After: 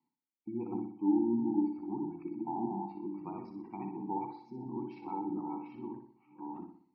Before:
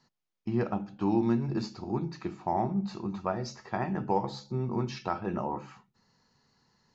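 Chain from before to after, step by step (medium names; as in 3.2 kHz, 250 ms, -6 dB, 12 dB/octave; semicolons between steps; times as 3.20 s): chunks repeated in reverse 665 ms, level -3 dB; vowel filter u; bass shelf 470 Hz +3 dB; in parallel at -11 dB: bit crusher 8-bit; on the sum: spectral gate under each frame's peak -30 dB strong; on a send: flutter echo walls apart 10.4 m, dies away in 0.54 s; on the sum: trim -2 dB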